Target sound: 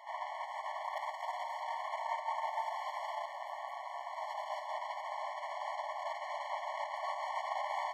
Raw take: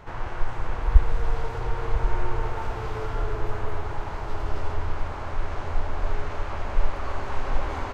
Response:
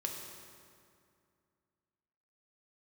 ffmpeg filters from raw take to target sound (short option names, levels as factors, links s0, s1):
-filter_complex "[0:a]asplit=3[s0][s1][s2];[s0]afade=t=out:st=3.25:d=0.02[s3];[s1]aeval=exprs='val(0)*sin(2*PI*130*n/s)':c=same,afade=t=in:st=3.25:d=0.02,afade=t=out:st=4.15:d=0.02[s4];[s2]afade=t=in:st=4.15:d=0.02[s5];[s3][s4][s5]amix=inputs=3:normalize=0,aeval=exprs='0.531*(cos(1*acos(clip(val(0)/0.531,-1,1)))-cos(1*PI/2))+0.0168*(cos(4*acos(clip(val(0)/0.531,-1,1)))-cos(4*PI/2))+0.0596*(cos(6*acos(clip(val(0)/0.531,-1,1)))-cos(6*PI/2))+0.0119*(cos(8*acos(clip(val(0)/0.531,-1,1)))-cos(8*PI/2))':c=same,asplit=2[s6][s7];[1:a]atrim=start_sample=2205,asetrate=61740,aresample=44100[s8];[s7][s8]afir=irnorm=-1:irlink=0,volume=0.501[s9];[s6][s9]amix=inputs=2:normalize=0,afftfilt=real='re*eq(mod(floor(b*sr/1024/580),2),1)':imag='im*eq(mod(floor(b*sr/1024/580),2),1)':win_size=1024:overlap=0.75,volume=0.668"